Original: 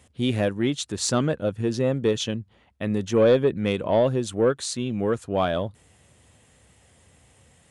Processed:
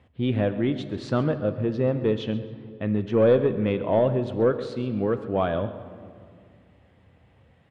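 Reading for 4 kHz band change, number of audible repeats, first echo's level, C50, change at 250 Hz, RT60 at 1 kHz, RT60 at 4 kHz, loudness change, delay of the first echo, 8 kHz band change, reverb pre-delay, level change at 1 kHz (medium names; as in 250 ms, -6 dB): -9.0 dB, 1, -16.0 dB, 11.0 dB, 0.0 dB, 2.1 s, 1.4 s, -0.5 dB, 134 ms, under -25 dB, 6 ms, -1.5 dB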